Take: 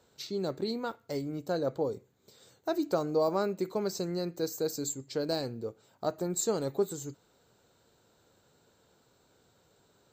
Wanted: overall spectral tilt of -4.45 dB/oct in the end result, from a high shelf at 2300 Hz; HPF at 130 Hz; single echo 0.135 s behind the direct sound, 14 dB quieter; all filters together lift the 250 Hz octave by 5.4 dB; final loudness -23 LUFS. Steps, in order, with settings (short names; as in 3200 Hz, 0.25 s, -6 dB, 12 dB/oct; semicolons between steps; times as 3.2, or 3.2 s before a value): HPF 130 Hz; bell 250 Hz +8 dB; high shelf 2300 Hz +5 dB; echo 0.135 s -14 dB; gain +7 dB